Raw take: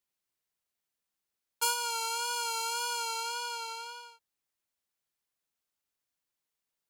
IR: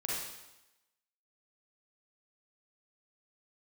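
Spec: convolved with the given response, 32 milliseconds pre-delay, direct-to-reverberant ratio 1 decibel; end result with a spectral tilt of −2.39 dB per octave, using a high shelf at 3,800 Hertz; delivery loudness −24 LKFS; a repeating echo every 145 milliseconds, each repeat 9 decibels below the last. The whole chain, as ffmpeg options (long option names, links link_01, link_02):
-filter_complex "[0:a]highshelf=frequency=3800:gain=4.5,aecho=1:1:145|290|435|580:0.355|0.124|0.0435|0.0152,asplit=2[link_01][link_02];[1:a]atrim=start_sample=2205,adelay=32[link_03];[link_02][link_03]afir=irnorm=-1:irlink=0,volume=-5dB[link_04];[link_01][link_04]amix=inputs=2:normalize=0,volume=3.5dB"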